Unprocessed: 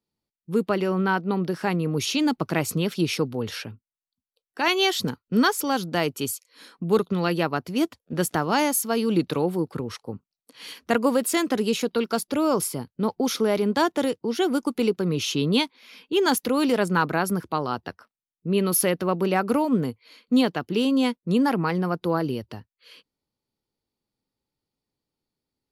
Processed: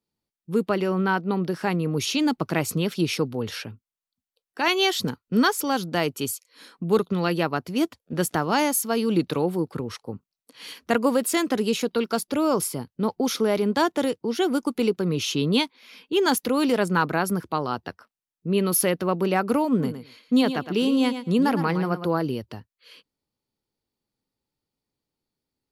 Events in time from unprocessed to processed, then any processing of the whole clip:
0:19.68–0:22.09: repeating echo 112 ms, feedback 15%, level −10 dB

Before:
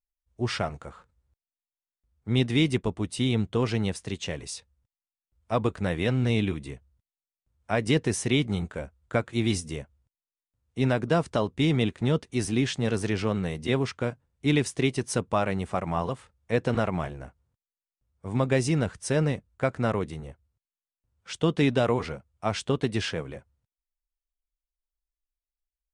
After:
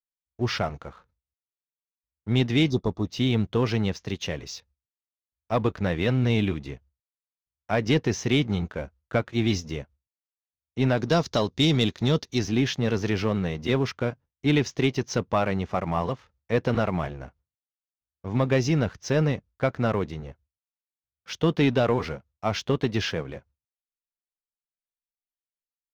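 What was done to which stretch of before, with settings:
0:02.70–0:03.06: time-frequency box erased 1,300–3,400 Hz
0:10.97–0:12.39: flat-topped bell 5,800 Hz +10.5 dB
whole clip: noise gate with hold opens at −56 dBFS; Butterworth low-pass 6,500 Hz 72 dB per octave; leveller curve on the samples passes 1; level −1.5 dB

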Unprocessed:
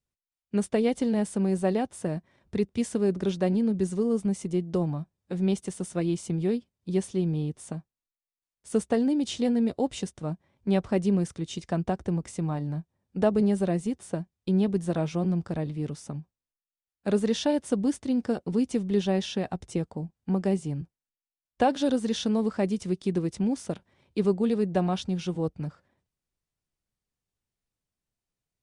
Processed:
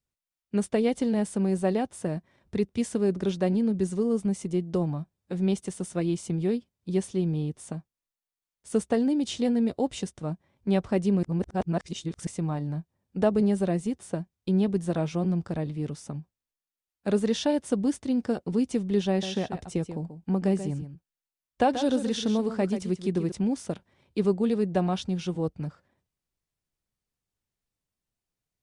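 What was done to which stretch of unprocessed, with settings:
0:11.23–0:12.27: reverse
0:19.09–0:23.32: single-tap delay 135 ms −10.5 dB

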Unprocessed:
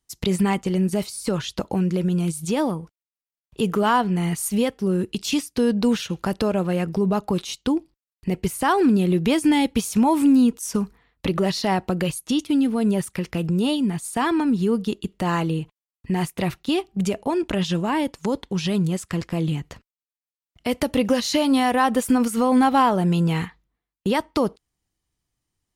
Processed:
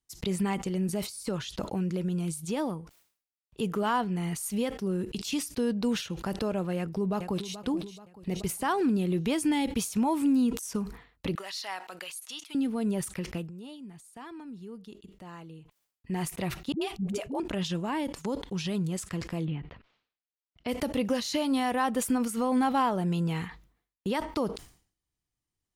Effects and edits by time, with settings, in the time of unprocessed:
0:06.77–0:07.57: delay throw 430 ms, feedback 45%, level −13 dB
0:11.35–0:12.55: high-pass filter 1,100 Hz
0:13.36–0:16.14: duck −14 dB, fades 0.15 s
0:16.72–0:17.40: all-pass dispersion highs, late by 93 ms, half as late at 310 Hz
0:19.44–0:20.67: low-pass filter 2,900 Hz → 5,600 Hz 24 dB per octave
whole clip: level that may fall only so fast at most 120 dB per second; level −8.5 dB

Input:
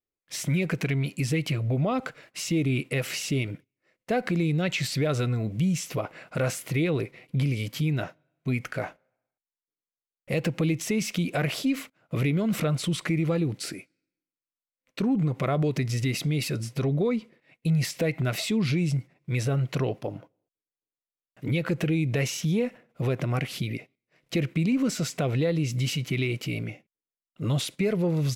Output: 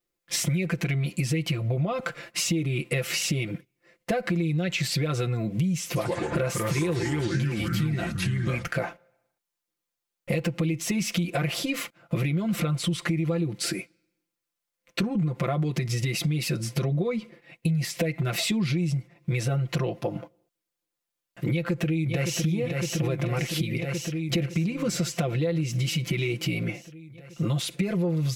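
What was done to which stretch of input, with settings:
0:05.86–0:08.67: delay with pitch and tempo change per echo 96 ms, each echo −3 semitones, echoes 3
0:21.49–0:22.43: delay throw 560 ms, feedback 70%, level −7 dB
whole clip: comb filter 5.8 ms, depth 85%; downward compressor 6 to 1, threshold −31 dBFS; level +7 dB

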